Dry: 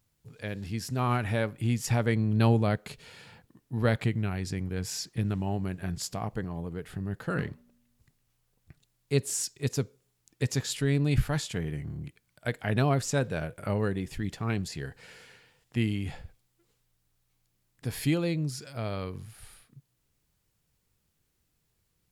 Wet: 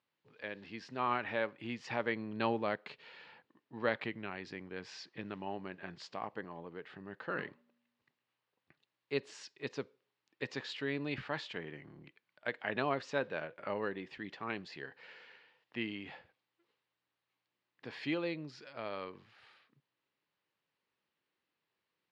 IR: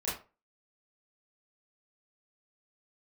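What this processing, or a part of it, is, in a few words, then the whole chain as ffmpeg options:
phone earpiece: -af "highpass=450,equalizer=f=450:t=q:w=4:g=-4,equalizer=f=700:t=q:w=4:g=-6,equalizer=f=1.4k:t=q:w=4:g=-4,equalizer=f=2.3k:t=q:w=4:g=-3,equalizer=f=3.4k:t=q:w=4:g=-4,lowpass=f=3.6k:w=0.5412,lowpass=f=3.6k:w=1.3066"

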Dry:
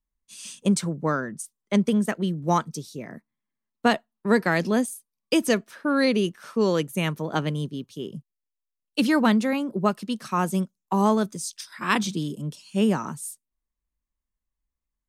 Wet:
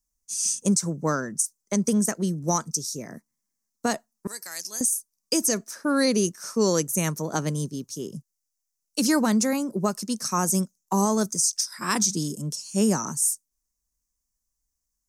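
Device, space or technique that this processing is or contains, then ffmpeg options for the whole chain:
over-bright horn tweeter: -filter_complex "[0:a]highshelf=f=4.4k:t=q:w=3:g=11,alimiter=limit=-11.5dB:level=0:latency=1:release=103,asettb=1/sr,asplit=3[a][b][c];[a]atrim=end=4.274[d];[b]atrim=start=4.27:end=4.81,asetpts=PTS-STARTPTS,afade=t=in:d=0.004:c=qsin,afade=t=out:st=0.536:d=0.004:c=qsin,aderivative[e];[c]atrim=start=4.806[f];[d][e]acrossfade=d=0.004:c1=hsin:c2=qsin[g];[g][f]acrossfade=d=0.004:c1=qsin:c2=hsin"

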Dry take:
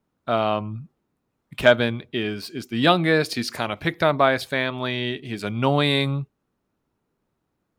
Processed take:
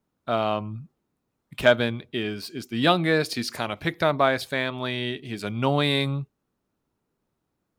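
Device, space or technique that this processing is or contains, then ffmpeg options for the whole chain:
exciter from parts: -filter_complex "[0:a]asplit=2[a][b];[b]highpass=2.8k,asoftclip=type=tanh:threshold=-30.5dB,volume=-9.5dB[c];[a][c]amix=inputs=2:normalize=0,volume=-2.5dB"

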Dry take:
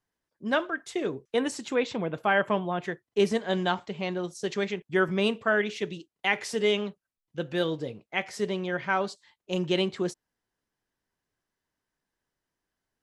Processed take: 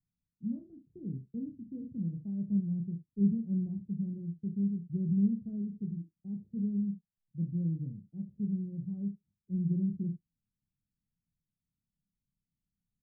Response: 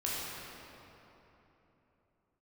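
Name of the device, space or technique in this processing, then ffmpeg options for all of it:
the neighbour's flat through the wall: -filter_complex "[0:a]asettb=1/sr,asplit=3[a][b][c];[a]atrim=end=1.974[d];[b]atrim=start=1.97:end=2.52,asetpts=PTS-STARTPTS,afade=t=in:d=0.004:c=qsin,afade=t=out:st=0.546:d=0.004:c=qsin,lowshelf=f=360:g=-4.5[e];[c]atrim=start=2.516[f];[d][e]acrossfade=d=0.004:c1=hsin:c2=qsin[g];[g][f]acrossfade=d=0.004:c1=qsin:c2=hsin,lowpass=f=190:w=0.5412,lowpass=f=190:w=1.3066,equalizer=f=190:t=o:w=0.97:g=6,aecho=1:1:30|70:0.531|0.237"

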